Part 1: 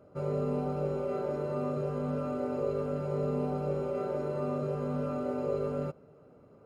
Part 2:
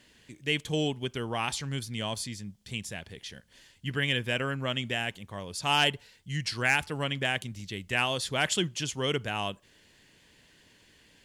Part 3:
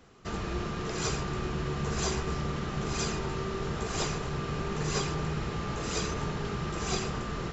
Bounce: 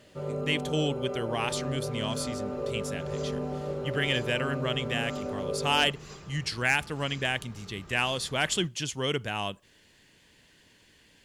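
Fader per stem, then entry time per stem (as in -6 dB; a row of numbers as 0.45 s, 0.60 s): -1.5 dB, 0.0 dB, -16.0 dB; 0.00 s, 0.00 s, 1.15 s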